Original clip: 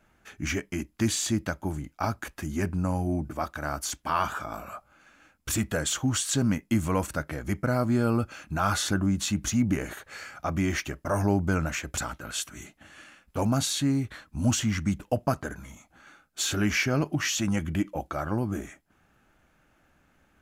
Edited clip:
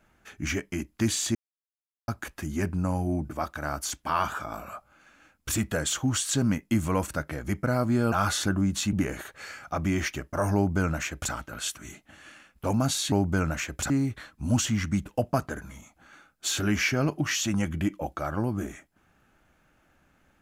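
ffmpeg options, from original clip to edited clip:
ffmpeg -i in.wav -filter_complex "[0:a]asplit=7[link_01][link_02][link_03][link_04][link_05][link_06][link_07];[link_01]atrim=end=1.35,asetpts=PTS-STARTPTS,afade=type=out:start_time=1.346:duration=0.004:curve=hsin[link_08];[link_02]atrim=start=1.35:end=2.08,asetpts=PTS-STARTPTS,volume=0[link_09];[link_03]atrim=start=2.08:end=8.122,asetpts=PTS-STARTPTS,afade=type=in:duration=0.004:curve=hsin[link_10];[link_04]atrim=start=8.568:end=9.382[link_11];[link_05]atrim=start=9.648:end=13.842[link_12];[link_06]atrim=start=11.268:end=12.052[link_13];[link_07]atrim=start=13.838[link_14];[link_08][link_09][link_10]concat=n=3:v=0:a=1[link_15];[link_15][link_11]acrossfade=duration=0.004:curve1=hsin:curve2=hsin[link_16];[link_16][link_12]acrossfade=duration=0.004:curve1=hsin:curve2=hsin[link_17];[link_17][link_13]acrossfade=duration=0.004:curve1=hsin:curve2=hsin[link_18];[link_18][link_14]acrossfade=duration=0.004:curve1=hsin:curve2=hsin" out.wav

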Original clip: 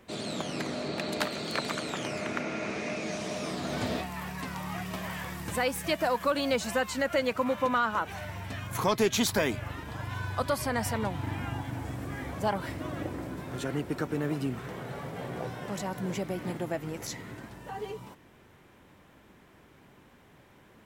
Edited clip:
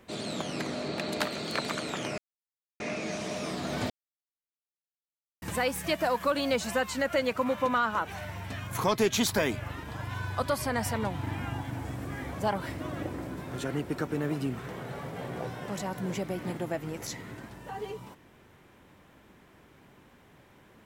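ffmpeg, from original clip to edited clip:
ffmpeg -i in.wav -filter_complex "[0:a]asplit=5[link_01][link_02][link_03][link_04][link_05];[link_01]atrim=end=2.18,asetpts=PTS-STARTPTS,afade=type=out:start_time=2.176:duration=0.004:curve=hsin[link_06];[link_02]atrim=start=2.18:end=2.8,asetpts=PTS-STARTPTS,volume=0[link_07];[link_03]atrim=start=2.8:end=3.9,asetpts=PTS-STARTPTS,afade=type=in:duration=0.004:curve=hsin,afade=type=out:start_time=1.096:duration=0.004:curve=hsin[link_08];[link_04]atrim=start=3.9:end=5.42,asetpts=PTS-STARTPTS,volume=0[link_09];[link_05]atrim=start=5.42,asetpts=PTS-STARTPTS,afade=type=in:duration=0.004:curve=hsin[link_10];[link_06][link_07][link_08][link_09][link_10]concat=n=5:v=0:a=1" out.wav

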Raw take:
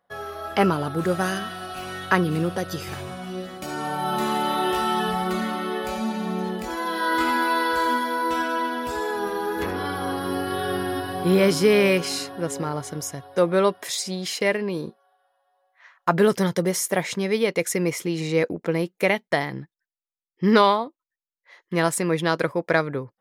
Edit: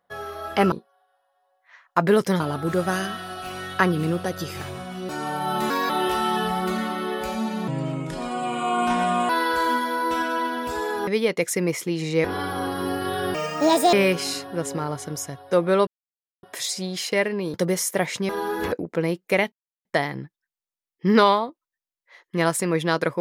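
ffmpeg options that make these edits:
ffmpeg -i in.wav -filter_complex "[0:a]asplit=17[link_01][link_02][link_03][link_04][link_05][link_06][link_07][link_08][link_09][link_10][link_11][link_12][link_13][link_14][link_15][link_16][link_17];[link_01]atrim=end=0.722[link_18];[link_02]atrim=start=14.828:end=16.512[link_19];[link_03]atrim=start=0.718:end=3.412[link_20];[link_04]atrim=start=3.668:end=4.284[link_21];[link_05]atrim=start=4.28:end=4.53,asetpts=PTS-STARTPTS,asetrate=56007,aresample=44100,atrim=end_sample=8681,asetpts=PTS-STARTPTS[link_22];[link_06]atrim=start=4.526:end=6.314[link_23];[link_07]atrim=start=6.31:end=7.49,asetpts=PTS-STARTPTS,asetrate=32193,aresample=44100[link_24];[link_08]atrim=start=7.486:end=9.272[link_25];[link_09]atrim=start=17.258:end=18.432[link_26];[link_10]atrim=start=9.698:end=10.804[link_27];[link_11]atrim=start=10.8:end=11.78,asetpts=PTS-STARTPTS,asetrate=73647,aresample=44100,atrim=end_sample=25879,asetpts=PTS-STARTPTS[link_28];[link_12]atrim=start=11.776:end=13.72,asetpts=PTS-STARTPTS,afade=type=out:start_time=1.94:duration=0.004:curve=hsin,apad=pad_dur=0.56[link_29];[link_13]atrim=start=13.72:end=14.832,asetpts=PTS-STARTPTS,afade=type=in:duration=0.004:curve=hsin[link_30];[link_14]atrim=start=16.508:end=17.262[link_31];[link_15]atrim=start=9.268:end=9.702[link_32];[link_16]atrim=start=18.428:end=19.23,asetpts=PTS-STARTPTS,afade=type=out:start_time=0.798:duration=0.004:curve=hsin,apad=pad_dur=0.33[link_33];[link_17]atrim=start=19.23,asetpts=PTS-STARTPTS,afade=type=in:duration=0.004:curve=hsin[link_34];[link_18][link_19]acrossfade=duration=0.004:curve1=hsin:curve2=hsin[link_35];[link_35][link_20]acrossfade=duration=0.004:curve1=hsin:curve2=hsin[link_36];[link_36][link_21]acrossfade=duration=0.004:curve1=hsin:curve2=hsin[link_37];[link_37][link_22]acrossfade=duration=0.004:curve1=hsin:curve2=hsin[link_38];[link_38][link_23]acrossfade=duration=0.004:curve1=hsin:curve2=hsin[link_39];[link_39][link_24]acrossfade=duration=0.004:curve1=hsin:curve2=hsin[link_40];[link_40][link_25]acrossfade=duration=0.004:curve1=hsin:curve2=hsin[link_41];[link_41][link_26]acrossfade=duration=0.004:curve1=hsin:curve2=hsin[link_42];[link_42][link_27]acrossfade=duration=0.004:curve1=hsin:curve2=hsin[link_43];[link_43][link_28]acrossfade=duration=0.004:curve1=hsin:curve2=hsin[link_44];[link_29][link_30]concat=n=2:v=0:a=1[link_45];[link_44][link_45]acrossfade=duration=0.004:curve1=hsin:curve2=hsin[link_46];[link_46][link_31]acrossfade=duration=0.004:curve1=hsin:curve2=hsin[link_47];[link_47][link_32]acrossfade=duration=0.004:curve1=hsin:curve2=hsin[link_48];[link_33][link_34]concat=n=2:v=0:a=1[link_49];[link_48][link_49]acrossfade=duration=0.004:curve1=hsin:curve2=hsin" out.wav

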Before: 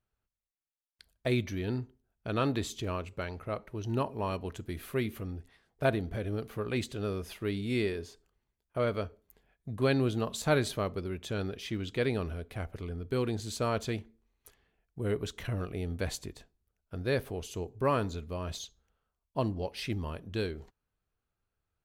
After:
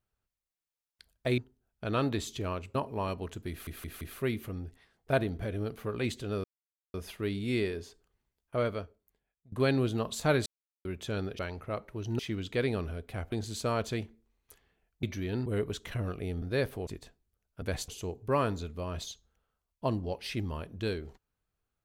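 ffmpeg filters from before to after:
ffmpeg -i in.wav -filter_complex "[0:a]asplit=19[link_01][link_02][link_03][link_04][link_05][link_06][link_07][link_08][link_09][link_10][link_11][link_12][link_13][link_14][link_15][link_16][link_17][link_18][link_19];[link_01]atrim=end=1.382[link_20];[link_02]atrim=start=1.808:end=3.182[link_21];[link_03]atrim=start=3.978:end=4.902[link_22];[link_04]atrim=start=4.728:end=4.902[link_23];[link_05]atrim=start=4.728:end=4.902[link_24];[link_06]atrim=start=4.728:end=7.16,asetpts=PTS-STARTPTS,afade=type=out:start_time=2.428:duration=0.004:curve=hsin,apad=pad_dur=0.5[link_25];[link_07]atrim=start=7.16:end=9.74,asetpts=PTS-STARTPTS,afade=type=in:duration=0.004:curve=hsin,afade=type=out:start_time=1.69:duration=0.89:curve=qua:silence=0.0891251[link_26];[link_08]atrim=start=9.74:end=10.68,asetpts=PTS-STARTPTS,afade=type=in:duration=0.004:curve=hsin:silence=0.0891251,afade=type=out:start_time=0.936:duration=0.004:curve=hsin[link_27];[link_09]atrim=start=10.68:end=11.07,asetpts=PTS-STARTPTS,volume=0[link_28];[link_10]atrim=start=11.07:end=11.612,asetpts=PTS-STARTPTS,afade=type=in:duration=0.004:curve=hsin[link_29];[link_11]atrim=start=3.178:end=3.982[link_30];[link_12]atrim=start=11.608:end=12.742[link_31];[link_13]atrim=start=13.278:end=14.992[link_32];[link_14]atrim=start=1.378:end=1.812[link_33];[link_15]atrim=start=14.988:end=15.952[link_34];[link_16]atrim=start=16.958:end=17.412[link_35];[link_17]atrim=start=16.208:end=16.962[link_36];[link_18]atrim=start=15.948:end=16.212[link_37];[link_19]atrim=start=17.408[link_38];[link_20][link_21]acrossfade=duration=0.004:curve1=hsin:curve2=hsin[link_39];[link_39][link_22]acrossfade=duration=0.004:curve1=hsin:curve2=hsin[link_40];[link_40][link_23]acrossfade=duration=0.004:curve1=hsin:curve2=hsin[link_41];[link_41][link_24]acrossfade=duration=0.004:curve1=hsin:curve2=hsin[link_42];[link_25][link_26][link_27][link_28][link_29]concat=n=5:v=0:a=1[link_43];[link_42][link_43]acrossfade=duration=0.004:curve1=hsin:curve2=hsin[link_44];[link_44][link_30]acrossfade=duration=0.004:curve1=hsin:curve2=hsin[link_45];[link_45][link_31]acrossfade=duration=0.004:curve1=hsin:curve2=hsin[link_46];[link_46][link_32]acrossfade=duration=0.004:curve1=hsin:curve2=hsin[link_47];[link_47][link_33]acrossfade=duration=0.004:curve1=hsin:curve2=hsin[link_48];[link_48][link_34]acrossfade=duration=0.004:curve1=hsin:curve2=hsin[link_49];[link_49][link_35]acrossfade=duration=0.004:curve1=hsin:curve2=hsin[link_50];[link_50][link_36]acrossfade=duration=0.004:curve1=hsin:curve2=hsin[link_51];[link_51][link_37]acrossfade=duration=0.004:curve1=hsin:curve2=hsin[link_52];[link_52][link_38]acrossfade=duration=0.004:curve1=hsin:curve2=hsin" out.wav

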